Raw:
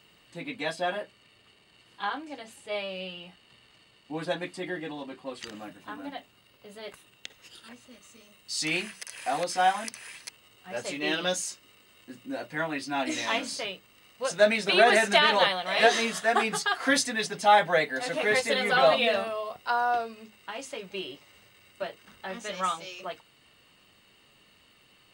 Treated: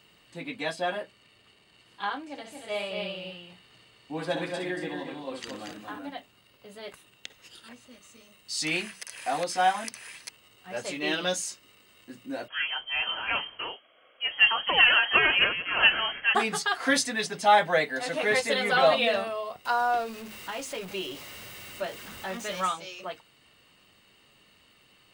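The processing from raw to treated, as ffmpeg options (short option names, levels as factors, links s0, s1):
-filter_complex "[0:a]asettb=1/sr,asplit=3[s0][s1][s2];[s0]atrim=end=2.294[s3];[s1]atrim=start=2.29:end=5.99,asetpts=PTS-STARTPTS,afade=t=in:d=0.004:c=qsin,afade=t=out:st=3.696:d=0.004:c=qsin,aecho=1:1:64|231|265:0.422|0.531|0.316,atrim=end_sample=163170[s4];[s2]atrim=start=5.986[s5];[s3][s4]acrossfade=d=0.004:c1=hsin:c2=qsin[s6];[s6][s5]acrossfade=d=0.004:c1=qsin:c2=hsin,asettb=1/sr,asplit=3[s7][s8][s9];[s7]atrim=end=12.484[s10];[s8]atrim=start=12.48:end=16.35,asetpts=PTS-STARTPTS,afade=t=in:d=0.004:c=qsin,afade=t=out:st=3.866:d=0.004:c=qsin,lowpass=f=2900:t=q:w=0.5098,lowpass=f=2900:t=q:w=0.6013,lowpass=f=2900:t=q:w=0.9,lowpass=f=2900:t=q:w=2.563,afreqshift=-3400[s11];[s9]atrim=start=16.346[s12];[s10][s11]acrossfade=d=0.004:c1=hsin:c2=qsin[s13];[s13][s12]acrossfade=d=0.004:c1=qsin:c2=hsin,asettb=1/sr,asplit=3[s14][s15][s16];[s14]atrim=end=19.654[s17];[s15]atrim=start=19.65:end=22.68,asetpts=PTS-STARTPTS,afade=t=in:d=0.004:c=qsin,afade=t=out:st=3.026:d=0.004:c=qsin,aeval=exprs='val(0)+0.5*0.0106*sgn(val(0))':c=same[s18];[s16]atrim=start=22.676[s19];[s17][s18]acrossfade=d=0.004:c1=hsin:c2=qsin[s20];[s20][s19]acrossfade=d=0.004:c1=qsin:c2=hsin"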